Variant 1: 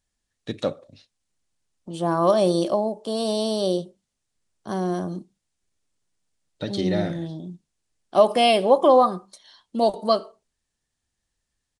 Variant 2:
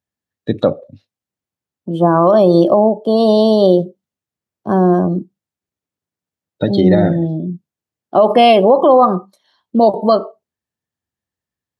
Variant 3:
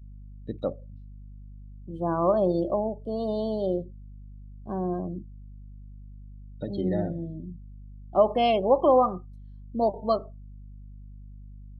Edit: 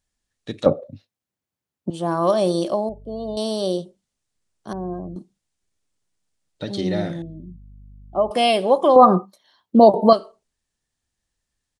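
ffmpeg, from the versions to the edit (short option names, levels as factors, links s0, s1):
-filter_complex "[1:a]asplit=2[s0][s1];[2:a]asplit=3[s2][s3][s4];[0:a]asplit=6[s5][s6][s7][s8][s9][s10];[s5]atrim=end=0.662[s11];[s0]atrim=start=0.658:end=1.902[s12];[s6]atrim=start=1.898:end=2.892[s13];[s2]atrim=start=2.888:end=3.372[s14];[s7]atrim=start=3.368:end=4.732[s15];[s3]atrim=start=4.728:end=5.162[s16];[s8]atrim=start=5.158:end=7.222[s17];[s4]atrim=start=7.218:end=8.312[s18];[s9]atrim=start=8.308:end=8.962[s19];[s1]atrim=start=8.958:end=10.132[s20];[s10]atrim=start=10.128[s21];[s11][s12]acrossfade=d=0.004:c1=hsin:c2=hsin[s22];[s22][s13]acrossfade=d=0.004:c1=hsin:c2=hsin[s23];[s23][s14]acrossfade=d=0.004:c1=hsin:c2=hsin[s24];[s24][s15]acrossfade=d=0.004:c1=hsin:c2=hsin[s25];[s25][s16]acrossfade=d=0.004:c1=hsin:c2=hsin[s26];[s26][s17]acrossfade=d=0.004:c1=hsin:c2=hsin[s27];[s27][s18]acrossfade=d=0.004:c1=hsin:c2=hsin[s28];[s28][s19]acrossfade=d=0.004:c1=hsin:c2=hsin[s29];[s29][s20]acrossfade=d=0.004:c1=hsin:c2=hsin[s30];[s30][s21]acrossfade=d=0.004:c1=hsin:c2=hsin"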